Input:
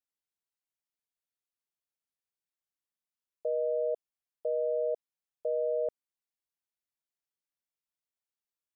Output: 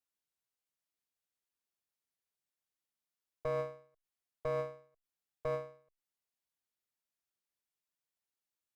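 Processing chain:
asymmetric clip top −41.5 dBFS, bottom −25.5 dBFS
every ending faded ahead of time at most 130 dB per second

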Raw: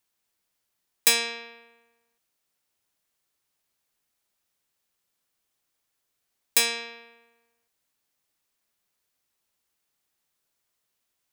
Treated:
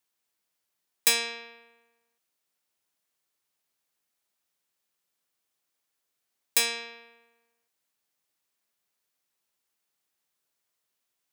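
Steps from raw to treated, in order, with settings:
high-pass filter 150 Hz 6 dB per octave
level −2.5 dB

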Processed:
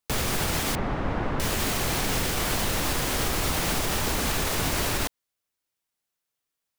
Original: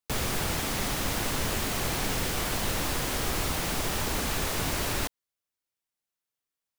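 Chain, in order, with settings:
0:00.75–0:01.40: low-pass filter 1,400 Hz 12 dB per octave
brickwall limiter −20.5 dBFS, peak gain reduction 4 dB
level +4.5 dB

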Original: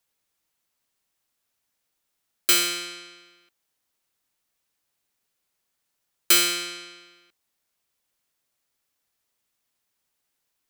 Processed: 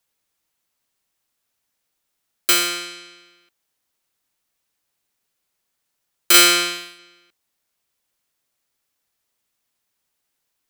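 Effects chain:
dynamic equaliser 880 Hz, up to +6 dB, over −39 dBFS, Q 0.71
0:06.34–0:06.99: leveller curve on the samples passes 2
level +2 dB

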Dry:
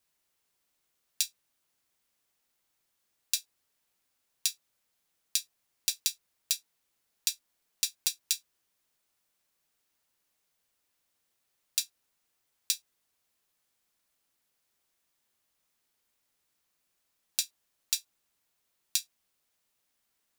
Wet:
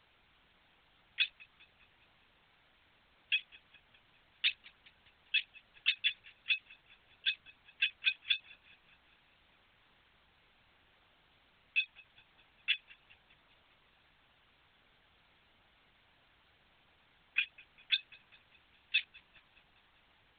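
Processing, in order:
three sine waves on the formant tracks
Butterworth high-pass 1,100 Hz
bit-depth reduction 10 bits, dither triangular
tape wow and flutter 20 cents
delay with a low-pass on its return 204 ms, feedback 58%, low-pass 2,000 Hz, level −19 dB
linear-prediction vocoder at 8 kHz whisper
level −1 dB

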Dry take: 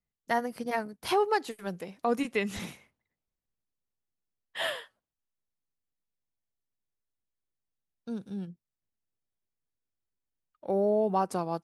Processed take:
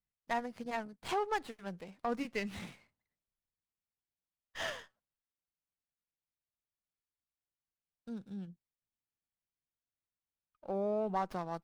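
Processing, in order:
low-pass filter 8,500 Hz 24 dB per octave
parametric band 390 Hz −4 dB 1.1 octaves
windowed peak hold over 5 samples
level −5.5 dB

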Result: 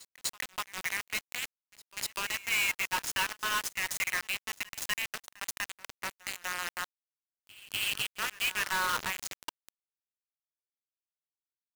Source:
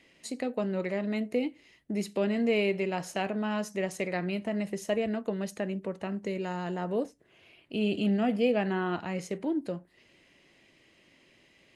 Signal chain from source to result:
brick-wall band-stop 150–910 Hz
log-companded quantiser 2 bits
backwards echo 246 ms −20.5 dB

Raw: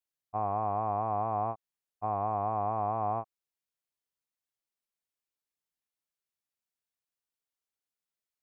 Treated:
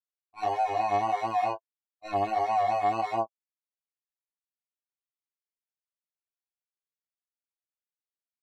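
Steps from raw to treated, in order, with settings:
mid-hump overdrive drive 25 dB, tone 2,100 Hz, clips at −20 dBFS
chorus effect 1.6 Hz, delay 17 ms, depth 2.8 ms
noise reduction from a noise print of the clip's start 29 dB
level +4 dB

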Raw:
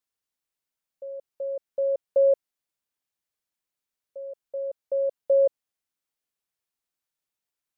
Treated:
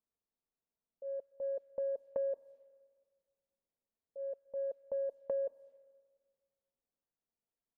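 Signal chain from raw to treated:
transient designer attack −7 dB, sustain +1 dB
low-pass that shuts in the quiet parts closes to 680 Hz, open at −24 dBFS
downward compressor 6 to 1, threshold −33 dBFS, peak gain reduction 14.5 dB
comb filter 4.4 ms, depth 31%
on a send: convolution reverb RT60 1.7 s, pre-delay 113 ms, DRR 22 dB
on the sum: level +1 dB

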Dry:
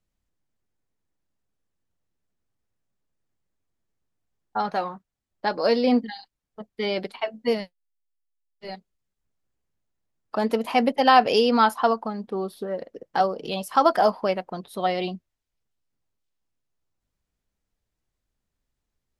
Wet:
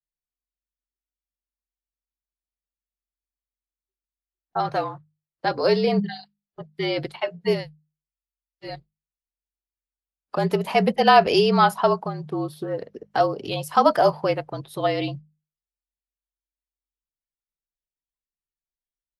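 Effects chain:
noise reduction from a noise print of the clip's start 23 dB
mains-hum notches 50/100/150/200/250 Hz
frequency shifter −47 Hz
level +1.5 dB

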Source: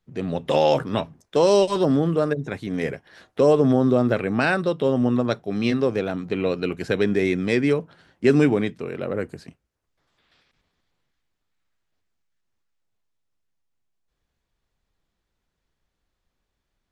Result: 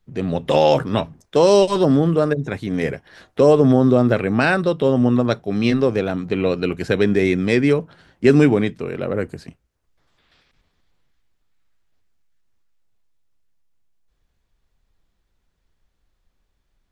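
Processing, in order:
low-shelf EQ 67 Hz +9.5 dB
level +3.5 dB

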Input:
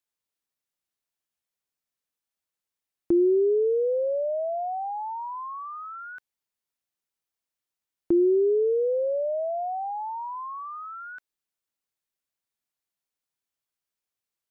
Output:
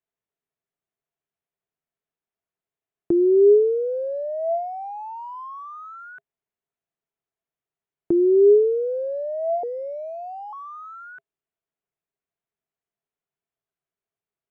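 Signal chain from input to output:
adaptive Wiener filter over 9 samples
parametric band 150 Hz +7 dB 0.63 octaves
hollow resonant body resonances 410/670 Hz, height 11 dB, ringing for 70 ms
0:09.63–0:10.53: frequency shifter −240 Hz
dynamic equaliser 1,100 Hz, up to −6 dB, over −33 dBFS, Q 0.83

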